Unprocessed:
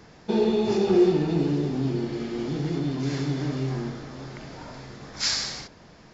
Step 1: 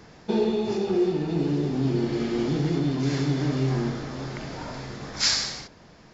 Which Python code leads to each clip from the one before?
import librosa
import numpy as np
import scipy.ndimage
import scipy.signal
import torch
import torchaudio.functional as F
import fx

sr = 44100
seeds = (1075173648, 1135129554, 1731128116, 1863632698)

y = fx.rider(x, sr, range_db=5, speed_s=0.5)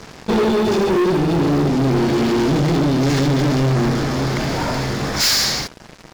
y = fx.leveller(x, sr, passes=5)
y = F.gain(torch.from_numpy(y), -2.5).numpy()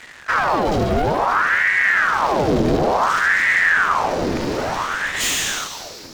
y = fx.octave_divider(x, sr, octaves=2, level_db=3.0)
y = fx.echo_feedback(y, sr, ms=239, feedback_pct=53, wet_db=-10.5)
y = fx.ring_lfo(y, sr, carrier_hz=1100.0, swing_pct=75, hz=0.57)
y = F.gain(torch.from_numpy(y), -2.0).numpy()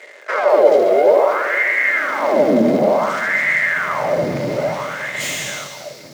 y = fx.filter_sweep_highpass(x, sr, from_hz=420.0, to_hz=140.0, start_s=1.2, end_s=3.69, q=4.1)
y = fx.small_body(y, sr, hz=(590.0, 2100.0), ring_ms=45, db=16)
y = fx.echo_crushed(y, sr, ms=204, feedback_pct=55, bits=5, wet_db=-13.5)
y = F.gain(torch.from_numpy(y), -5.0).numpy()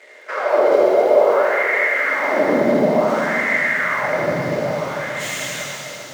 y = fx.rev_plate(x, sr, seeds[0], rt60_s=2.8, hf_ratio=0.95, predelay_ms=0, drr_db=-3.5)
y = F.gain(torch.from_numpy(y), -6.5).numpy()